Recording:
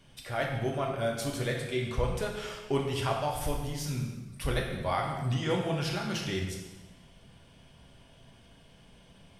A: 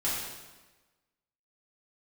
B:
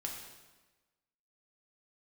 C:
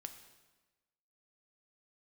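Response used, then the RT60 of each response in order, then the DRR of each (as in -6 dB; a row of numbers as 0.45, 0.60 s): B; 1.2, 1.2, 1.2 s; -9.5, -0.5, 6.5 dB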